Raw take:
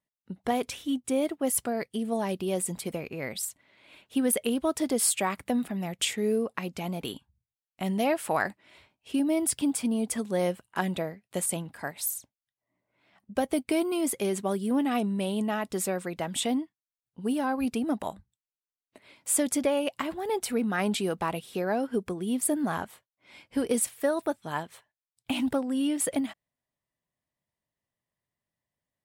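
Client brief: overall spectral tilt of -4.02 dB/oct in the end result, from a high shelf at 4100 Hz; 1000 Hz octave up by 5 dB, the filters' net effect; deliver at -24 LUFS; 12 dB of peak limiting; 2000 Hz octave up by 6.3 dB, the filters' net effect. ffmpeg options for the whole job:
-af "equalizer=f=1k:t=o:g=5.5,equalizer=f=2k:t=o:g=7,highshelf=f=4.1k:g=-4,volume=6dB,alimiter=limit=-13dB:level=0:latency=1"

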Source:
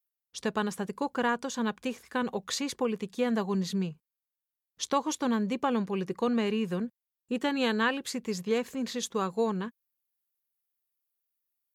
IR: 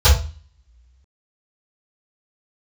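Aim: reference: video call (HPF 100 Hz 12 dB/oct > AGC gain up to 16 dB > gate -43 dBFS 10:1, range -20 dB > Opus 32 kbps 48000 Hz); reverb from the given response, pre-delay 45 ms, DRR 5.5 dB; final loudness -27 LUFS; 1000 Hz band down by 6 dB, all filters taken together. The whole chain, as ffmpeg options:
-filter_complex "[0:a]equalizer=f=1k:t=o:g=-7.5,asplit=2[a][b];[1:a]atrim=start_sample=2205,adelay=45[c];[b][c]afir=irnorm=-1:irlink=0,volume=-28dB[d];[a][d]amix=inputs=2:normalize=0,highpass=100,dynaudnorm=m=16dB,agate=range=-20dB:threshold=-43dB:ratio=10,volume=4dB" -ar 48000 -c:a libopus -b:a 32k

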